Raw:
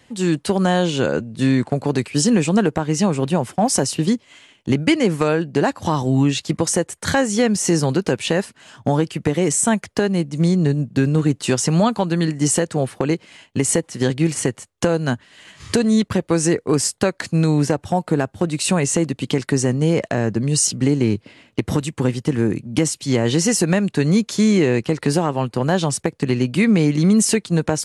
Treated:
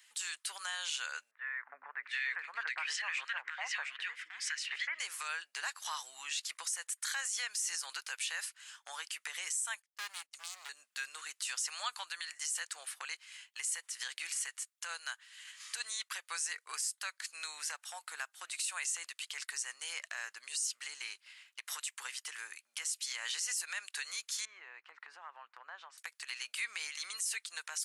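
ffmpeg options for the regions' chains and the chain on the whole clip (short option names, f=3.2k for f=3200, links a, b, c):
-filter_complex "[0:a]asettb=1/sr,asplit=3[a][b][c];[a]atrim=end=1.314[d];[b]atrim=start=1.31:end=4.99,asetpts=PTS-STARTPTS,afade=t=in:d=0.004:c=qsin,afade=t=out:st=3.676:d=0.004:c=qsin,lowpass=3k,equalizer=f=1.9k:w=1.5:g=13.5,acrossover=split=310|1500[e][f][g];[e]adelay=270[h];[g]adelay=720[i];[h][f][i]amix=inputs=3:normalize=0,atrim=end_sample=162288[j];[c]atrim=start=4.986[k];[d][j]acrossfade=d=0.004:c1=hsin:c2=qsin[l];[l][k]acrossfade=d=0.004:c1=qsin:c2=hsin,asettb=1/sr,asplit=3[m][n][o];[m]atrim=end=9.824[p];[n]atrim=start=9.82:end=10.69,asetpts=PTS-STARTPTS,afade=t=in:d=0.004:c=qsin,afade=t=out:st=0.866:d=0.004:c=qsin,agate=range=-39dB:threshold=-27dB:ratio=16:release=100:detection=peak,asoftclip=type=hard:threshold=-20dB[q];[o]atrim=start=10.686[r];[p][q]acrossfade=d=0.004:c1=hsin:c2=qsin[s];[s][r]acrossfade=d=0.004:c1=qsin:c2=hsin,asettb=1/sr,asplit=3[t][u][v];[t]atrim=end=24.454[w];[u]atrim=start=24.45:end=25.98,asetpts=PTS-STARTPTS,afade=t=in:d=0.004:c=qsin,afade=t=out:st=1.526:d=0.004:c=qsin,lowpass=1.2k,acompressor=threshold=-21dB:ratio=2:attack=3.2:release=140:knee=1:detection=peak[x];[v]atrim=start=25.976[y];[w][x]acrossfade=d=0.004:c1=hsin:c2=qsin[z];[z][y]acrossfade=d=0.004:c1=qsin:c2=hsin,highpass=f=1.3k:w=0.5412,highpass=f=1.3k:w=1.3066,highshelf=f=6.8k:g=10.5,alimiter=limit=-17.5dB:level=0:latency=1:release=83,volume=-8.5dB"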